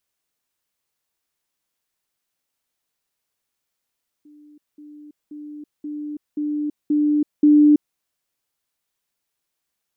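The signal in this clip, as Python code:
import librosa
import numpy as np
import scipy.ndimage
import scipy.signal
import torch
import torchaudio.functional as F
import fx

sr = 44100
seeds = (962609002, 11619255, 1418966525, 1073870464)

y = fx.level_ladder(sr, hz=297.0, from_db=-45.0, step_db=6.0, steps=7, dwell_s=0.33, gap_s=0.2)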